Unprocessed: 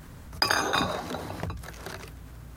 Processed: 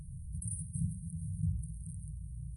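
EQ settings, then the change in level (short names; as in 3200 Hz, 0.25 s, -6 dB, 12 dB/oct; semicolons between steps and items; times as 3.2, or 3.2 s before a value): brick-wall FIR band-stop 180–8400 Hz; brick-wall FIR low-pass 11000 Hz; dynamic EQ 160 Hz, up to +4 dB, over -50 dBFS, Q 1.8; +1.5 dB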